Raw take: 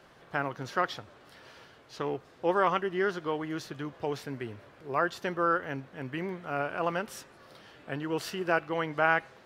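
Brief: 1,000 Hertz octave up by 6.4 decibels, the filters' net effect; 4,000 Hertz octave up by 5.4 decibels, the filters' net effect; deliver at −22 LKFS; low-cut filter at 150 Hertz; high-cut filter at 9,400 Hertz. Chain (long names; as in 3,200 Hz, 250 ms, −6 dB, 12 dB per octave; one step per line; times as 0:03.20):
high-pass filter 150 Hz
low-pass filter 9,400 Hz
parametric band 1,000 Hz +8 dB
parametric band 4,000 Hz +7 dB
level +5.5 dB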